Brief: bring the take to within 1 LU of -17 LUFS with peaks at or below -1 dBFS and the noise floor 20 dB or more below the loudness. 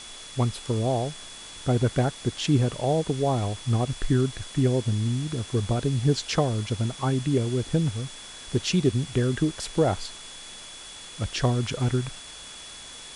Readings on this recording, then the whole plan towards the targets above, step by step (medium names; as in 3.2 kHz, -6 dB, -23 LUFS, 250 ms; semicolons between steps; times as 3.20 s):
steady tone 3.4 kHz; tone level -44 dBFS; noise floor -43 dBFS; noise floor target -46 dBFS; loudness -26.0 LUFS; peak level -10.5 dBFS; loudness target -17.0 LUFS
-> band-stop 3.4 kHz, Q 30; noise print and reduce 6 dB; trim +9 dB